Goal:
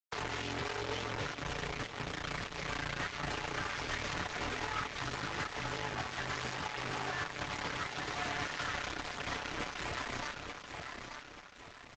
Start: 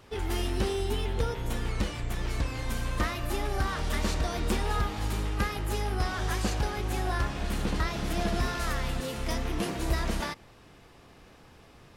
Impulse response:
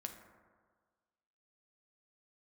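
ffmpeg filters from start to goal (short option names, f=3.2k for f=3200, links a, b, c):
-filter_complex "[0:a]acompressor=threshold=-32dB:ratio=2,acrusher=bits=4:mix=0:aa=0.000001,aecho=1:1:884|1768|2652|3536|4420:0.355|0.156|0.0687|0.0302|0.0133,asoftclip=type=tanh:threshold=-22.5dB,afreqshift=23,equalizer=f=1.7k:t=o:w=2.6:g=9.5,aecho=1:1:6.9:0.54,alimiter=limit=-17.5dB:level=0:latency=1:release=96,asplit=3[a][b][c];[a]afade=t=out:st=6.5:d=0.02[d];[b]lowshelf=f=61:g=-6.5,afade=t=in:st=6.5:d=0.02,afade=t=out:st=8.64:d=0.02[e];[c]afade=t=in:st=8.64:d=0.02[f];[d][e][f]amix=inputs=3:normalize=0,aresample=16000,aresample=44100,volume=-6.5dB" -ar 48000 -c:a libopus -b:a 16k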